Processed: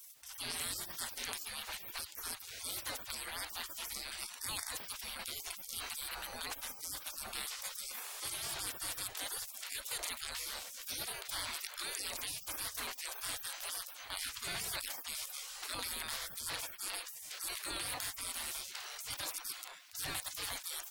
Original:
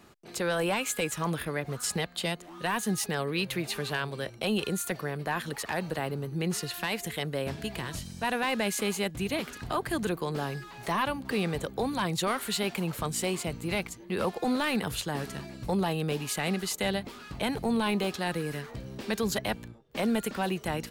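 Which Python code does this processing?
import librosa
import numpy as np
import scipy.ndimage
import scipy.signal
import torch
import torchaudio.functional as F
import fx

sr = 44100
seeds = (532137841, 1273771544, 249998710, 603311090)

y = fx.spec_gate(x, sr, threshold_db=-30, keep='weak')
y = fx.env_flatten(y, sr, amount_pct=50)
y = F.gain(torch.from_numpy(y), 6.5).numpy()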